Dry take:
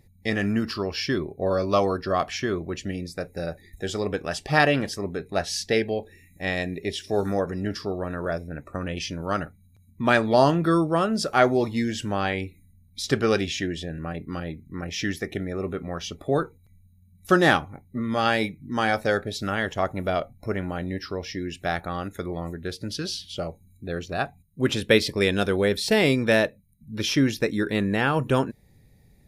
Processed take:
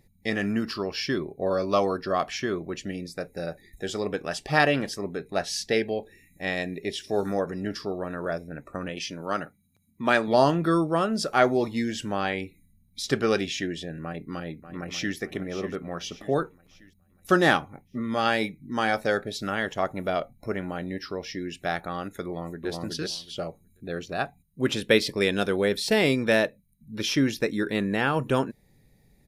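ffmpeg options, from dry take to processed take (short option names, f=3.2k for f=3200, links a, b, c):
-filter_complex "[0:a]asettb=1/sr,asplit=3[a][b][c];[a]atrim=end=8.894[d];[b]atrim=start=8.89:end=10.28,asetpts=PTS-STARTPTS,afade=t=in:d=0.004:c=qsin,afade=t=out:st=1.386:d=0.004:c=qsin,highpass=f=180:p=1[e];[c]atrim=start=10.276[f];[d][e]acrossfade=d=0.004:c1=hsin:c2=qsin[g];[g][f]acrossfade=d=0.004:c1=qsin:c2=hsin,asplit=2[h][i];[i]afade=t=in:st=14.03:d=0.01,afade=t=out:st=15.16:d=0.01,aecho=0:1:590|1180|1770|2360|2950:0.266073|0.119733|0.0538797|0.0242459|0.0109106[j];[h][j]amix=inputs=2:normalize=0,asplit=2[k][l];[l]afade=t=in:st=22.26:d=0.01,afade=t=out:st=22.69:d=0.01,aecho=0:1:370|740|1110:0.841395|0.126209|0.0189314[m];[k][m]amix=inputs=2:normalize=0,equalizer=f=82:w=1.7:g=-9.5,volume=-1.5dB"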